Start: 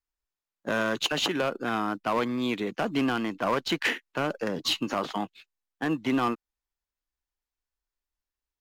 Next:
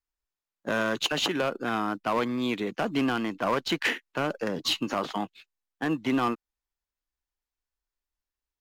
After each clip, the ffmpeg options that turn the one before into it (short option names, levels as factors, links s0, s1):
-af anull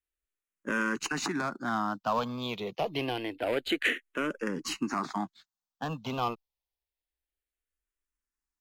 -filter_complex "[0:a]asplit=2[s0][s1];[s1]afreqshift=-0.27[s2];[s0][s2]amix=inputs=2:normalize=1"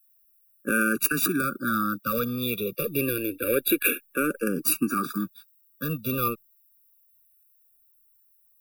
-af "aexciter=amount=12.9:drive=9.5:freq=10000,afftfilt=real='re*eq(mod(floor(b*sr/1024/560),2),0)':imag='im*eq(mod(floor(b*sr/1024/560),2),0)':win_size=1024:overlap=0.75,volume=2.11"